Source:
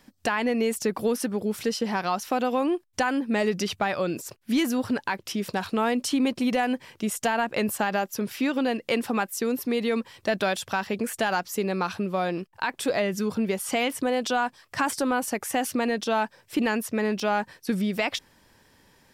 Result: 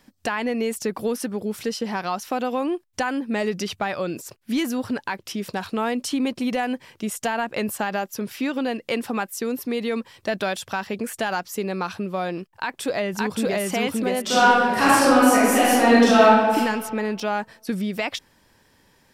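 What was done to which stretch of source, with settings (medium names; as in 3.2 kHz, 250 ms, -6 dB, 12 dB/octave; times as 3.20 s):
12.55–13.64 s: echo throw 570 ms, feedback 20%, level -0.5 dB
14.22–16.55 s: reverb throw, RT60 1.6 s, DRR -11 dB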